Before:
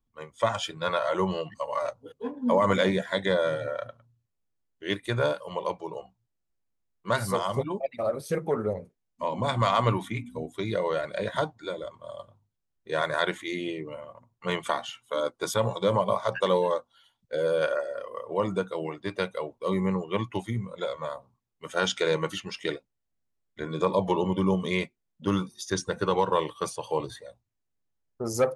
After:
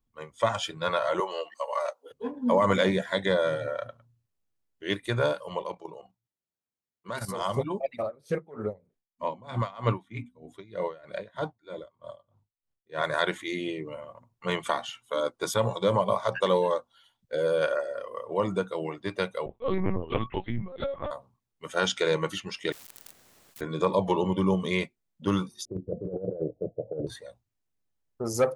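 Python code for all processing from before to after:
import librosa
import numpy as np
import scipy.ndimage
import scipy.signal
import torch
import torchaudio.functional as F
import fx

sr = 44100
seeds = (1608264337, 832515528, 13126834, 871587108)

y = fx.chain(x, sr, fx.highpass(hz=440.0, slope=24),
    fx.high_shelf(hz=10000.0, db=5.5), at=(1.2, 2.11))
y = fx.chain(y, sr, fx.highpass(hz=110.0, slope=12),
    fx.level_steps(step_db=11), at=(5.62, 7.41))
y = fx.chain(y, sr, fx.high_shelf(hz=6400.0, db=-11.0),
    fx.tremolo_db(hz=3.2, depth_db=23), at=(8.02, 13.04))
y = fx.chain(y, sr, fx.lpc_vocoder(seeds[0], excitation='pitch_kept', order=10),
    fx.doppler_dist(depth_ms=0.11), at=(19.46, 21.11))
y = fx.chain(y, sr, fx.crossing_spikes(level_db=-37.5),
    fx.power_curve(exponent=0.35),
    fx.spectral_comp(ratio=10.0), at=(22.72, 23.61))
y = fx.chain(y, sr, fx.steep_lowpass(hz=680.0, slope=96),
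    fx.over_compress(threshold_db=-30.0, ratio=-0.5), at=(25.65, 27.07))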